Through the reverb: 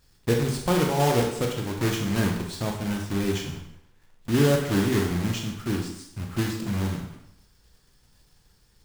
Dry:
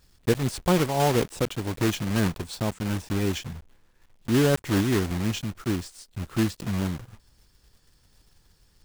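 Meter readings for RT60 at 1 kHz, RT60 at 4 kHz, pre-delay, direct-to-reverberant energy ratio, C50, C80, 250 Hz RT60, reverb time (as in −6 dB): 0.80 s, 0.70 s, 18 ms, 1.0 dB, 4.5 dB, 8.0 dB, 0.75 s, 0.75 s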